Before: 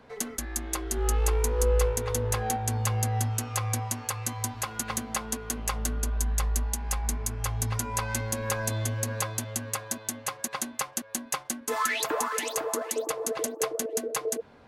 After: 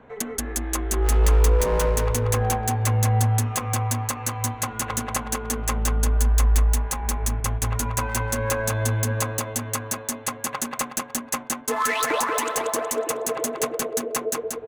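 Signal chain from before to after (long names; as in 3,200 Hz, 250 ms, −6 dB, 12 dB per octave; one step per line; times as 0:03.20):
adaptive Wiener filter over 9 samples
0:07.40–0:08.07: noise gate with hold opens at −20 dBFS
wave folding −20 dBFS
repeating echo 184 ms, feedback 45%, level −3.5 dB
level +4.5 dB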